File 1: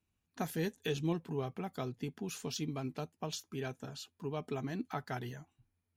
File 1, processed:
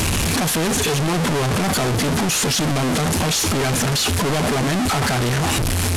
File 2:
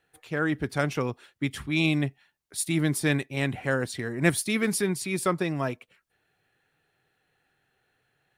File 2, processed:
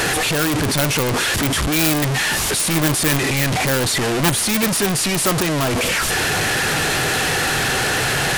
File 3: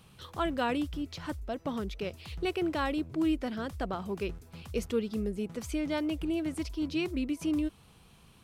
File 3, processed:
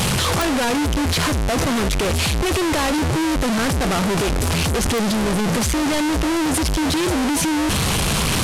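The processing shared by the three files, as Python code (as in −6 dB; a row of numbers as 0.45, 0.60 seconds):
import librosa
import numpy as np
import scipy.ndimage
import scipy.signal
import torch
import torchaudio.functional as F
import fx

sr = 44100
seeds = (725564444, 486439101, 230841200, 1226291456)

y = fx.delta_mod(x, sr, bps=64000, step_db=-19.0)
y = (np.mod(10.0 ** (15.0 / 20.0) * y + 1.0, 2.0) - 1.0) / 10.0 ** (15.0 / 20.0)
y = F.gain(torch.from_numpy(y), 6.0).numpy()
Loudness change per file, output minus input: +21.0, +10.0, +14.0 LU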